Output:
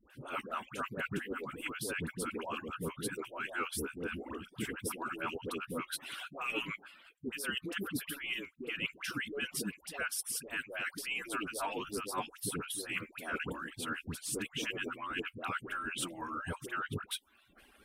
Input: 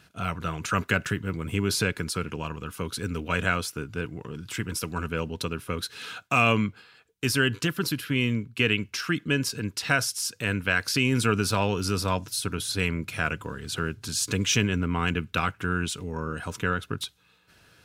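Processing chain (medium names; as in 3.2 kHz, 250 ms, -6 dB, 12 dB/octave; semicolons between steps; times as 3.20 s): harmonic-percussive separation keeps percussive; high-order bell 5.3 kHz -10 dB 1.1 oct; reverse; compression 12:1, threshold -35 dBFS, peak gain reduction 17 dB; reverse; phase dispersion highs, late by 103 ms, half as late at 840 Hz; trim +1.5 dB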